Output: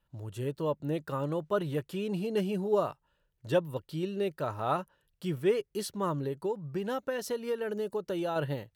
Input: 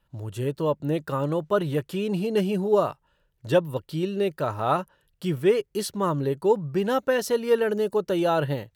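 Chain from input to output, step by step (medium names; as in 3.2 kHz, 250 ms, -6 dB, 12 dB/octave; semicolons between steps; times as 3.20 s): 6.17–8.36 s: compression 4:1, threshold -23 dBFS, peak gain reduction 8 dB; trim -6.5 dB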